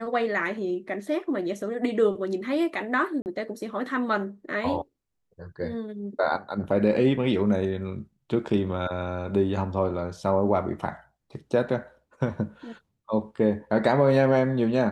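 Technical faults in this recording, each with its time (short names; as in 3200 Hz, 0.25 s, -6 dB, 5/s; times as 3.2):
3.22–3.26 gap 39 ms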